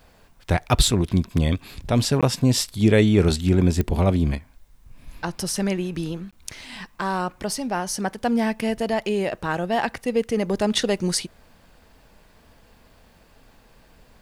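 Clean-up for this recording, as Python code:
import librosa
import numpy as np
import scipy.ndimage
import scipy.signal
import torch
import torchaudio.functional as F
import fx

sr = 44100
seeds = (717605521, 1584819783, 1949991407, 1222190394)

y = fx.fix_declick_ar(x, sr, threshold=10.0)
y = fx.fix_interpolate(y, sr, at_s=(2.21, 6.31), length_ms=16.0)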